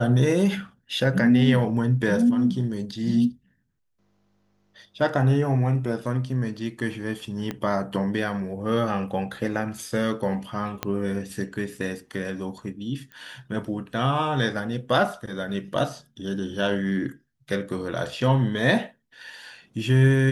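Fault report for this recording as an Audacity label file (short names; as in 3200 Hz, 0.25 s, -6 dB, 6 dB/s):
7.510000	7.510000	pop -16 dBFS
10.830000	10.830000	pop -11 dBFS
13.120000	13.120000	pop -26 dBFS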